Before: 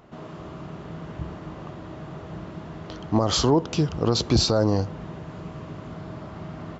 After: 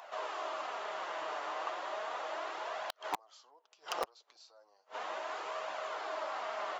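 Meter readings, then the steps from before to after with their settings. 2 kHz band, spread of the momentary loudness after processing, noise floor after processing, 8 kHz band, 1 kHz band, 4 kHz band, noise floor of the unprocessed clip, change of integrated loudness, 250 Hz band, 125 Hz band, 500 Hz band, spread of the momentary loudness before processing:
+0.5 dB, 6 LU, -69 dBFS, no reading, -3.5 dB, -16.0 dB, -40 dBFS, -16.5 dB, -31.5 dB, under -40 dB, -12.5 dB, 18 LU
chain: high-pass 630 Hz 24 dB/octave; inverted gate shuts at -23 dBFS, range -41 dB; flange 0.35 Hz, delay 1.1 ms, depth 6 ms, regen -28%; in parallel at -3.5 dB: integer overflow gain 32 dB; on the sum: trim +5.5 dB

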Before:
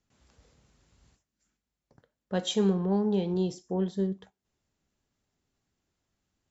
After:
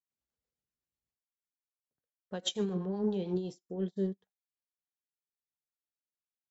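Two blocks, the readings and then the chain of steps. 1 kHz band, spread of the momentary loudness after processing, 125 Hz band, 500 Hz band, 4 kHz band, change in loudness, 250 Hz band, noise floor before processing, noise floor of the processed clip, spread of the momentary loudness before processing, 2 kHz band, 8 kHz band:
-9.5 dB, 8 LU, -7.0 dB, -5.5 dB, -2.5 dB, -6.0 dB, -6.5 dB, under -85 dBFS, under -85 dBFS, 7 LU, -7.5 dB, no reading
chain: peak limiter -25.5 dBFS, peak gain reduction 11 dB; rotary cabinet horn 8 Hz, later 0.6 Hz, at 2.89 s; bass shelf 170 Hz -7.5 dB; upward expansion 2.5:1, over -57 dBFS; trim +6.5 dB

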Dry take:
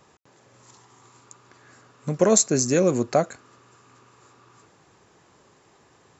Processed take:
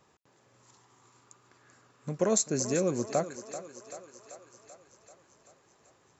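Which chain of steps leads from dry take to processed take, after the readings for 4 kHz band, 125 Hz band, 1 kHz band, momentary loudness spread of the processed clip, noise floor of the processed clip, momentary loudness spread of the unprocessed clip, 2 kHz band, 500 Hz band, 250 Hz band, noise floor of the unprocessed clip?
-8.0 dB, -8.5 dB, -8.0 dB, 20 LU, -66 dBFS, 15 LU, -8.0 dB, -8.0 dB, -8.5 dB, -59 dBFS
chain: thinning echo 387 ms, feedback 67%, high-pass 290 Hz, level -12 dB; trim -8.5 dB

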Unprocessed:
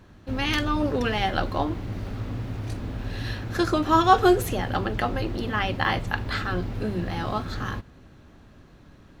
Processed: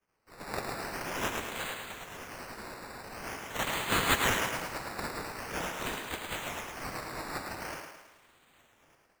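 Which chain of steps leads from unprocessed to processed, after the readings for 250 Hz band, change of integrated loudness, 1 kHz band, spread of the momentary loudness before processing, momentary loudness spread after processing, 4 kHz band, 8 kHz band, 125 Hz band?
-15.0 dB, -8.5 dB, -11.0 dB, 13 LU, 15 LU, -4.5 dB, +5.0 dB, -15.5 dB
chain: tilt EQ +4 dB/octave; spectral gate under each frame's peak -25 dB weak; level rider gain up to 15.5 dB; decimation with a swept rate 11×, swing 60% 0.45 Hz; on a send: thinning echo 108 ms, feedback 52%, high-pass 200 Hz, level -5 dB; on the sum: trim -8 dB

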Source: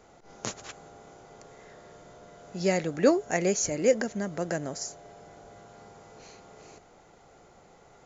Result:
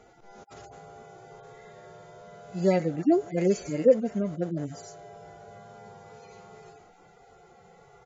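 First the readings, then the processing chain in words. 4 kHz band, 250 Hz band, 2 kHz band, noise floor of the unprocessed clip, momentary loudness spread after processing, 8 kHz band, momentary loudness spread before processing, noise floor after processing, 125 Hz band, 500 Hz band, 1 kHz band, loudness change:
-9.0 dB, +3.0 dB, -8.0 dB, -57 dBFS, 17 LU, no reading, 14 LU, -56 dBFS, +3.5 dB, +1.5 dB, -1.0 dB, +2.0 dB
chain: harmonic-percussive separation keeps harmonic; treble shelf 6.1 kHz -7.5 dB; speakerphone echo 150 ms, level -27 dB; trim +4 dB

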